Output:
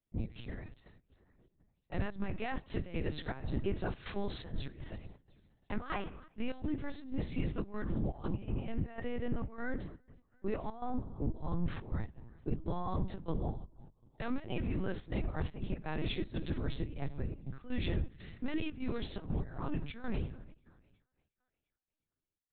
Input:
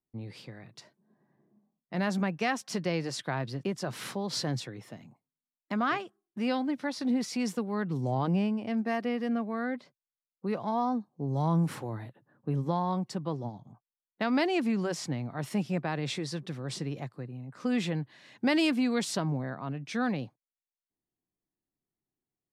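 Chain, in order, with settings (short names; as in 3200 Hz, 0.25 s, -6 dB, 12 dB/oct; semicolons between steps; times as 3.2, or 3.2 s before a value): octaver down 2 oct, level 0 dB; notch 2100 Hz, Q 26; limiter -22.5 dBFS, peak gain reduction 8.5 dB; on a send at -11 dB: reverb RT60 0.85 s, pre-delay 3 ms; on the sum: vocal rider within 3 dB 0.5 s; thinning echo 0.351 s, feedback 44%, high-pass 330 Hz, level -23 dB; step gate "xx.xxx.x.xxx.xx" 122 bpm -12 dB; LPC vocoder at 8 kHz pitch kept; bell 840 Hz -3 dB 1.5 oct; gain -2.5 dB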